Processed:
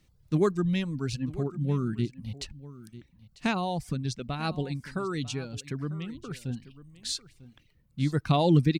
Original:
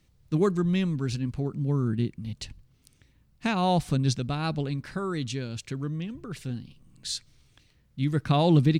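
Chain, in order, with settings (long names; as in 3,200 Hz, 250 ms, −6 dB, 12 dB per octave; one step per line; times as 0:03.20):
reverb reduction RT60 0.89 s
0:03.56–0:04.42: downward compressor, threshold −27 dBFS, peak gain reduction 7 dB
on a send: single-tap delay 946 ms −17.5 dB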